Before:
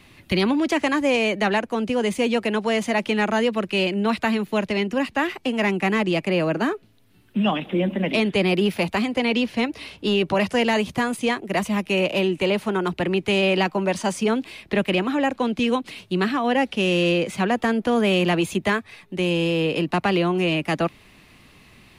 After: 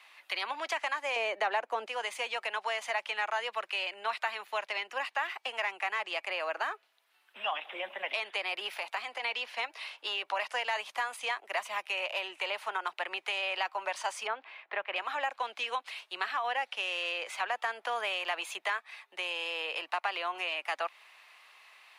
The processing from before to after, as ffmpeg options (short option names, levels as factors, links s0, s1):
-filter_complex "[0:a]asettb=1/sr,asplit=3[s0][s1][s2];[s0]atrim=end=1.164[s3];[s1]atrim=start=1.16:end=1.86,asetpts=PTS-STARTPTS,afade=t=in:d=0.004:c=qsin,afade=t=out:st=0.696:d=0.004:c=qsin,equalizer=f=290:w=0.48:g=14[s4];[s2]atrim=start=1.856[s5];[s3][s4]acrossfade=d=0.004:c1=hsin:c2=qsin[s6];[s6][s5]acrossfade=d=0.004:c1=qsin:c2=hsin,asplit=3[s7][s8][s9];[s7]afade=t=out:st=8.7:d=0.02[s10];[s8]acompressor=threshold=0.0708:ratio=6:attack=3.2:release=140:knee=1:detection=peak,afade=t=in:st=8.7:d=0.02,afade=t=out:st=9.22:d=0.02[s11];[s9]afade=t=in:st=9.22:d=0.02[s12];[s10][s11][s12]amix=inputs=3:normalize=0,asettb=1/sr,asplit=3[s13][s14][s15];[s13]atrim=end=14.274[s16];[s14]atrim=start=14.27:end=14.96,asetpts=PTS-STARTPTS,afade=t=in:d=0.004:c=qsin,afade=t=out:st=0.686:d=0.004:c=qsin,lowpass=2000[s17];[s15]atrim=start=14.956[s18];[s16][s17]acrossfade=d=0.004:c1=hsin:c2=qsin[s19];[s19][s18]acrossfade=d=0.004:c1=qsin:c2=hsin,highpass=f=760:w=0.5412,highpass=f=760:w=1.3066,acompressor=threshold=0.0398:ratio=3,highshelf=f=4100:g=-8.5,volume=0.891"